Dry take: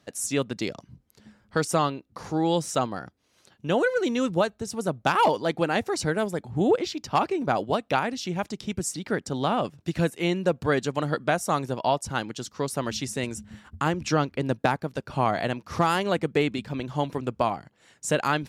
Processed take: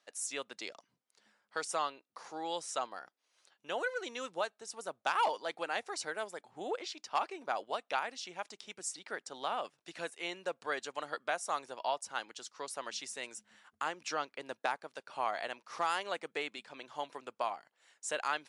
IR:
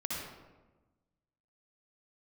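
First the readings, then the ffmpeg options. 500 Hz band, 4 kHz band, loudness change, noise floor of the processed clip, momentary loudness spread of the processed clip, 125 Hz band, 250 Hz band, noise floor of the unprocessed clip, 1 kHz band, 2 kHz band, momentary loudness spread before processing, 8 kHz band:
−14.0 dB, −8.0 dB, −11.5 dB, −84 dBFS, 10 LU, −33.5 dB, −23.5 dB, −67 dBFS, −9.0 dB, −8.0 dB, 8 LU, −8.0 dB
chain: -af "highpass=680,volume=-7.5dB" -ar 24000 -c:a libmp3lame -b:a 96k

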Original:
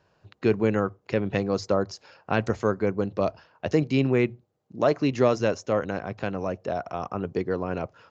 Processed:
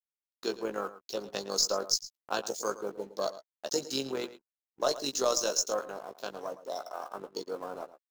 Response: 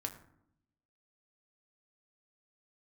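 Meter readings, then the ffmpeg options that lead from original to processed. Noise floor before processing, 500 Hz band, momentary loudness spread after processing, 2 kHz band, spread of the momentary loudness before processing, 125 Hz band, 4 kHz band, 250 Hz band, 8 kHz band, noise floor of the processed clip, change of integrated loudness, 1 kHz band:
−70 dBFS, −8.5 dB, 13 LU, −10.0 dB, 9 LU, −25.0 dB, +7.5 dB, −15.5 dB, can't be measured, below −85 dBFS, −6.5 dB, −5.5 dB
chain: -filter_complex "[0:a]aexciter=amount=15:drive=5.5:freq=3300,highpass=420,aeval=exprs='1.12*(cos(1*acos(clip(val(0)/1.12,-1,1)))-cos(1*PI/2))+0.0316*(cos(4*acos(clip(val(0)/1.12,-1,1)))-cos(4*PI/2))':channel_layout=same,afwtdn=0.02,tremolo=f=46:d=0.519,highshelf=frequency=1800:width_type=q:width=1.5:gain=-9.5,aeval=exprs='sgn(val(0))*max(abs(val(0))-0.00237,0)':channel_layout=same,asplit=2[link_01][link_02];[link_02]adelay=15,volume=-7dB[link_03];[link_01][link_03]amix=inputs=2:normalize=0,agate=range=-33dB:threshold=-49dB:ratio=3:detection=peak,aemphasis=mode=production:type=50kf,asplit=2[link_04][link_05];[link_05]adelay=110.8,volume=-15dB,highshelf=frequency=4000:gain=-2.49[link_06];[link_04][link_06]amix=inputs=2:normalize=0,volume=-5.5dB"

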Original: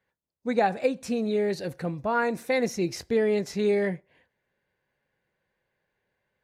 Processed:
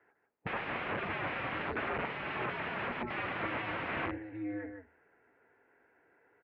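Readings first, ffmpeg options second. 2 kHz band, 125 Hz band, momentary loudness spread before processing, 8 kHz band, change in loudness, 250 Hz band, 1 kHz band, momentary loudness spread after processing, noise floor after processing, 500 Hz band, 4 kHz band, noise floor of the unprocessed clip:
−1.0 dB, −7.5 dB, 7 LU, below −35 dB, −9.5 dB, −11.5 dB, −6.0 dB, 5 LU, −74 dBFS, −15.5 dB, −5.0 dB, −81 dBFS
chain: -filter_complex "[0:a]asplit=2[link_01][link_02];[link_02]aecho=0:1:755:0.0631[link_03];[link_01][link_03]amix=inputs=2:normalize=0,asplit=2[link_04][link_05];[link_05]highpass=frequency=720:poles=1,volume=17dB,asoftclip=type=tanh:threshold=-11.5dB[link_06];[link_04][link_06]amix=inputs=2:normalize=0,lowpass=frequency=1100:poles=1,volume=-6dB,bandreject=frequency=60:width_type=h:width=6,bandreject=frequency=120:width_type=h:width=6,bandreject=frequency=180:width_type=h:width=6,bandreject=frequency=240:width_type=h:width=6,acompressor=threshold=-22dB:ratio=8,equalizer=frequency=170:width=1.5:gain=-3,asplit=2[link_07][link_08];[link_08]aecho=0:1:152:0.473[link_09];[link_07][link_09]amix=inputs=2:normalize=0,aeval=exprs='(mod(39.8*val(0)+1,2)-1)/39.8':channel_layout=same,highpass=frequency=190:width_type=q:width=0.5412,highpass=frequency=190:width_type=q:width=1.307,lowpass=frequency=2600:width_type=q:width=0.5176,lowpass=frequency=2600:width_type=q:width=0.7071,lowpass=frequency=2600:width_type=q:width=1.932,afreqshift=-99,volume=4dB"

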